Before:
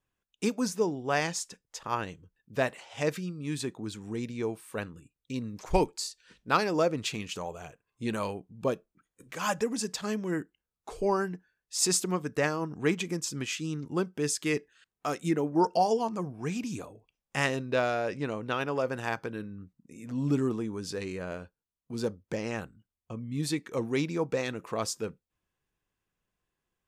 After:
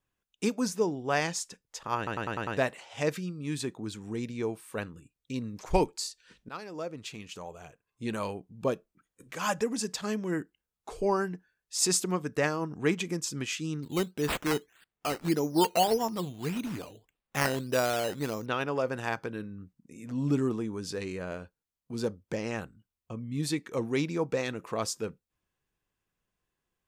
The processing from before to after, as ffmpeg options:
ffmpeg -i in.wav -filter_complex "[0:a]asettb=1/sr,asplit=3[link_01][link_02][link_03];[link_01]atrim=end=13.834[link_04];[link_02]atrim=start=13.83:end=18.46,asetpts=PTS-STARTPTS,afade=type=in:duration=0.004:curve=qsin,afade=type=out:start_time=4.626:duration=0.004:curve=qsin,acrusher=samples=10:mix=1:aa=0.000001:lfo=1:lforange=6:lforate=1.7[link_05];[link_03]atrim=start=18.456[link_06];[link_04][link_05]acrossfade=duration=0.004:curve1=hsin:curve2=qsin[link_07];[link_07][link_06]acrossfade=duration=0.004:curve1=qsin:curve2=hsin,asplit=8[link_08][link_09][link_10][link_11][link_12][link_13][link_14][link_15];[link_08]atrim=end=2.072[link_16];[link_09]atrim=start=1.968:end=2.072[link_17];[link_10]atrim=start=1.968:end=2.072[link_18];[link_11]atrim=start=1.968:end=2.072[link_19];[link_12]atrim=start=1.968:end=2.072[link_20];[link_13]atrim=start=1.968:end=2.072[link_21];[link_14]atrim=start=2.568:end=6.49,asetpts=PTS-STARTPTS,afade=type=out:start_time=3.918:duration=0.004:curve=hsin:silence=0.133352[link_22];[link_15]atrim=start=6.49,asetpts=PTS-STARTPTS,afade=type=in:duration=2.02:silence=0.133352[link_23];[link_16][link_17]acrossfade=duration=0.004:curve1=hsin:curve2=hsin[link_24];[link_24][link_18]acrossfade=duration=0.004:curve1=hsin:curve2=hsin[link_25];[link_25][link_19]acrossfade=duration=0.004:curve1=hsin:curve2=hsin[link_26];[link_26][link_20]acrossfade=duration=0.004:curve1=hsin:curve2=hsin[link_27];[link_27][link_21]acrossfade=duration=0.004:curve1=hsin:curve2=hsin[link_28];[link_22][link_23]concat=n=2:v=0:a=1[link_29];[link_28][link_29]acrossfade=duration=0.004:curve1=hsin:curve2=hsin" out.wav

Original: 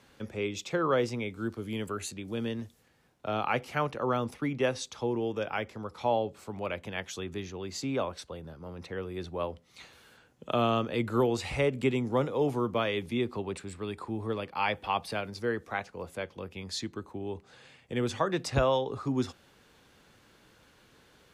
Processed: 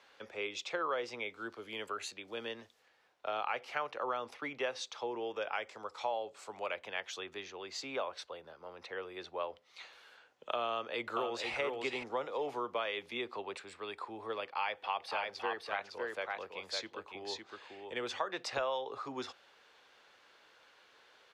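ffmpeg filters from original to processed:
ffmpeg -i in.wav -filter_complex "[0:a]asettb=1/sr,asplit=3[link_01][link_02][link_03];[link_01]atrim=end=5.554[link_04];[link_02]atrim=start=5.55:end=6.74,asetpts=PTS-STARTPTS,afade=type=in:duration=0.004:curve=qsin,afade=type=out:start_time=1.186:duration=0.004:curve=qsin,equalizer=frequency=7800:width=1.5:gain=11[link_05];[link_03]atrim=start=6.736[link_06];[link_04][link_05]acrossfade=duration=0.004:curve1=hsin:curve2=qsin[link_07];[link_07][link_06]acrossfade=duration=0.004:curve1=qsin:curve2=hsin,asplit=2[link_08][link_09];[link_09]afade=type=in:start_time=10.68:duration=0.01,afade=type=out:start_time=11.55:duration=0.01,aecho=0:1:480|960:0.562341|0.0562341[link_10];[link_08][link_10]amix=inputs=2:normalize=0,asettb=1/sr,asplit=3[link_11][link_12][link_13];[link_11]atrim=end=14.444[link_14];[link_12]atrim=start=14.44:end=18.02,asetpts=PTS-STARTPTS,afade=type=in:duration=0.004:curve=qsin,afade=type=out:start_time=3.576:duration=0.004:curve=qsin,aecho=1:1:558:0.596,atrim=end_sample=157878[link_15];[link_13]atrim=start=18.016[link_16];[link_14][link_15]acrossfade=duration=0.004:curve1=hsin:curve2=qsin[link_17];[link_17][link_16]acrossfade=duration=0.004:curve1=qsin:curve2=hsin,acrossover=split=450 5400:gain=0.0631 1 0.1[link_18][link_19][link_20];[link_18][link_19][link_20]amix=inputs=3:normalize=0,acompressor=threshold=-33dB:ratio=3,highshelf=frequency=8900:gain=7.5" out.wav

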